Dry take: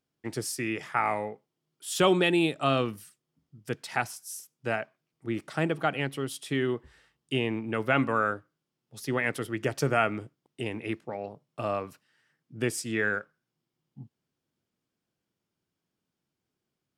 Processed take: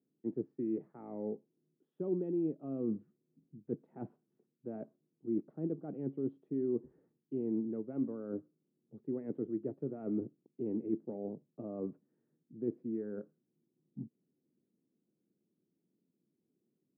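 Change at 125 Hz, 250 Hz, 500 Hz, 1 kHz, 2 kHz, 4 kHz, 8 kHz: −12.0 dB, −4.5 dB, −9.0 dB, −27.0 dB, below −40 dB, below −40 dB, below −40 dB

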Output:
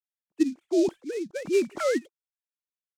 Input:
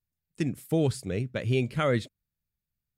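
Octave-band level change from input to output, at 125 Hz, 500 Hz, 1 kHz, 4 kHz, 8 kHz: −24.5, +3.5, −2.0, −2.5, +3.0 decibels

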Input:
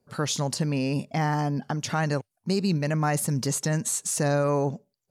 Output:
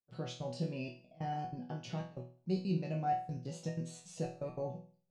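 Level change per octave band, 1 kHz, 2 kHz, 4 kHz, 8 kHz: −9.0, −19.5, −17.0, −26.0 decibels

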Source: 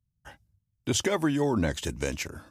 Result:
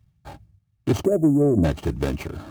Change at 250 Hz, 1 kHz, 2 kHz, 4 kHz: +8.0, −0.5, −4.5, −7.0 decibels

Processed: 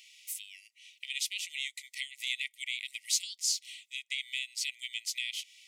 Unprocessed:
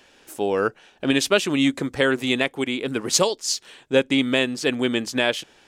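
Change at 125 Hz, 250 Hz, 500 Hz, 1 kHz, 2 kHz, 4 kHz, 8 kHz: below −40 dB, below −40 dB, below −40 dB, below −40 dB, −12.5 dB, −8.5 dB, −6.5 dB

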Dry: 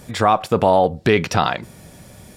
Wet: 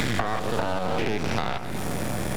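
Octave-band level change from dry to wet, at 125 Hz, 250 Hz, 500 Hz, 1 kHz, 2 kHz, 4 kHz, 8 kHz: −5.0, −5.5, −11.0, −10.5, −5.0, −5.0, −1.5 decibels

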